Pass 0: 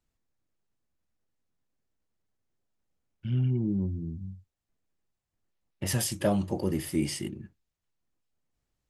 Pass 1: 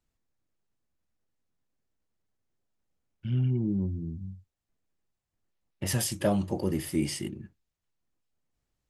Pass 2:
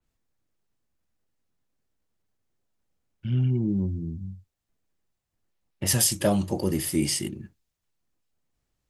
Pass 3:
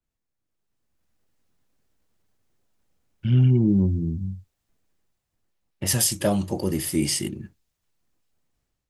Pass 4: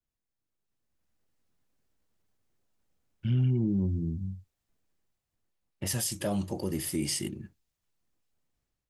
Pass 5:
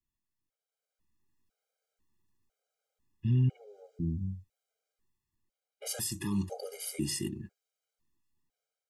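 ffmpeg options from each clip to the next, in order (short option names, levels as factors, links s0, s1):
-af anull
-af "adynamicequalizer=threshold=0.00316:dfrequency=3500:dqfactor=0.7:tfrequency=3500:tqfactor=0.7:attack=5:release=100:ratio=0.375:range=3.5:mode=boostabove:tftype=highshelf,volume=1.41"
-af "dynaudnorm=f=350:g=5:m=5.31,volume=0.447"
-af "alimiter=limit=0.188:level=0:latency=1:release=106,volume=0.531"
-af "afftfilt=real='re*gt(sin(2*PI*1*pts/sr)*(1-2*mod(floor(b*sr/1024/410),2)),0)':imag='im*gt(sin(2*PI*1*pts/sr)*(1-2*mod(floor(b*sr/1024/410),2)),0)':win_size=1024:overlap=0.75"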